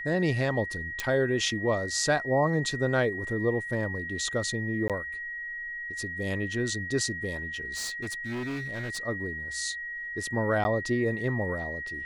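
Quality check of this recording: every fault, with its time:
whistle 1,900 Hz −34 dBFS
0:01.00: click −14 dBFS
0:04.88–0:04.90: drop-out 17 ms
0:07.73–0:08.99: clipping −30.5 dBFS
0:10.64–0:10.65: drop-out 10 ms

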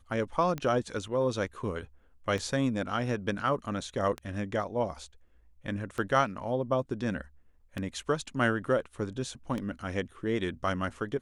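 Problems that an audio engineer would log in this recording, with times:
scratch tick 33 1/3 rpm −21 dBFS

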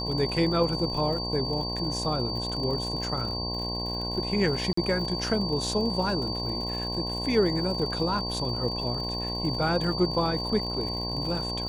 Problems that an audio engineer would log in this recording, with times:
mains buzz 60 Hz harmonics 18 −34 dBFS
surface crackle 86 per second −35 dBFS
whistle 4,600 Hz −32 dBFS
0:04.73–0:04.77: drop-out 44 ms

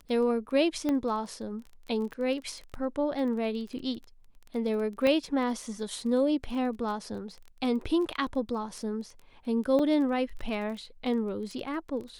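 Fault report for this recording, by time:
surface crackle 19 per second −37 dBFS
0:00.89: click −17 dBFS
0:05.07: click −16 dBFS
0:09.79: drop-out 4.9 ms

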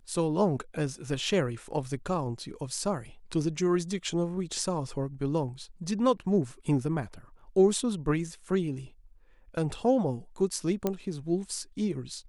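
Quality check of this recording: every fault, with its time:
0:10.87: click −14 dBFS

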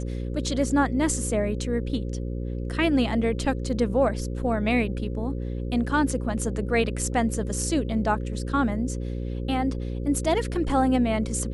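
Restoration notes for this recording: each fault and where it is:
mains buzz 60 Hz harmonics 9 −30 dBFS

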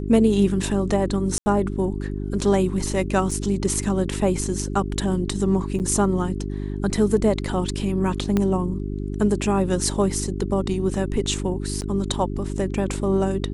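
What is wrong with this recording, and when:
mains hum 50 Hz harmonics 8 −28 dBFS
0:01.38–0:01.46: drop-out 80 ms
0:03.31: drop-out 4.7 ms
0:05.79–0:05.80: drop-out 8.7 ms
0:08.37: click −9 dBFS
0:11.81–0:11.82: drop-out 9.4 ms

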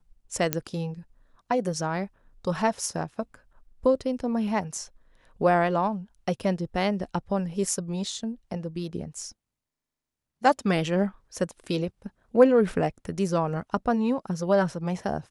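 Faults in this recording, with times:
0:00.53: click −6 dBFS

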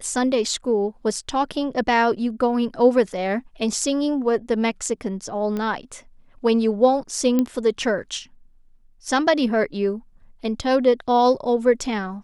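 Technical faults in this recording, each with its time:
0:05.57: click −16 dBFS
0:07.39: click −9 dBFS

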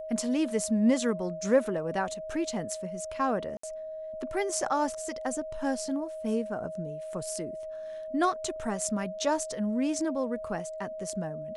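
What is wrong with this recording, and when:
whistle 630 Hz −36 dBFS
0:03.57–0:03.63: drop-out 64 ms

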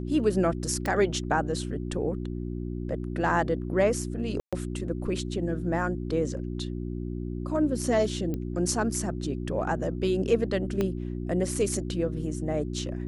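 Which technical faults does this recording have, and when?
mains hum 60 Hz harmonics 6 −33 dBFS
0:00.86: click −16 dBFS
0:04.40–0:04.53: drop-out 126 ms
0:08.34: click −21 dBFS
0:10.81: click −15 dBFS

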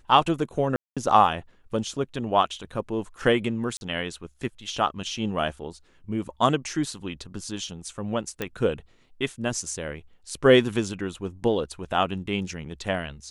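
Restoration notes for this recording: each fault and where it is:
0:00.76–0:00.97: drop-out 206 ms
0:03.77–0:03.81: drop-out 41 ms
0:08.42: click −14 dBFS

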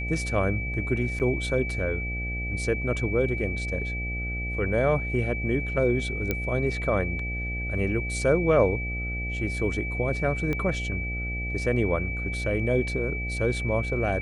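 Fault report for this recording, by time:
mains buzz 60 Hz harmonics 13 −32 dBFS
whistle 2,300 Hz −32 dBFS
0:01.19–0:01.20: drop-out 8.8 ms
0:06.31: click −12 dBFS
0:10.53: click −17 dBFS

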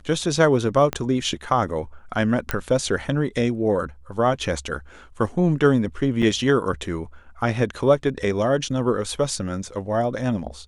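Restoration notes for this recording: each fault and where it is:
0:00.93: click −10 dBFS
0:02.51: click −7 dBFS
0:06.22–0:06.23: drop-out 5.5 ms

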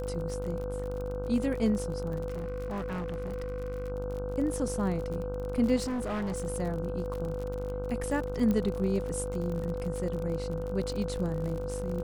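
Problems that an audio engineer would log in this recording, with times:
mains buzz 50 Hz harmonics 31 −37 dBFS
surface crackle 50 per second −35 dBFS
whistle 500 Hz −35 dBFS
0:02.28–0:03.92: clipping −31 dBFS
0:05.76–0:06.46: clipping −29.5 dBFS
0:08.51: click −18 dBFS

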